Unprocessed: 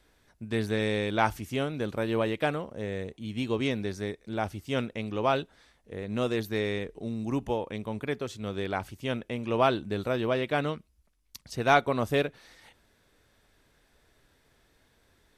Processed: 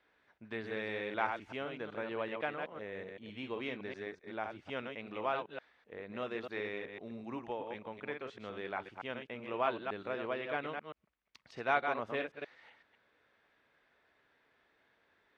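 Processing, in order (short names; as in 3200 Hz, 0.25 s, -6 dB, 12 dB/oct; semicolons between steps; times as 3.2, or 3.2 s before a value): reverse delay 0.127 s, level -5.5 dB; HPF 630 Hz 6 dB/oct; in parallel at -1 dB: compressor, threshold -40 dBFS, peak gain reduction 21 dB; on the sum: Chebyshev low-pass 2200 Hz, order 2; gain -7.5 dB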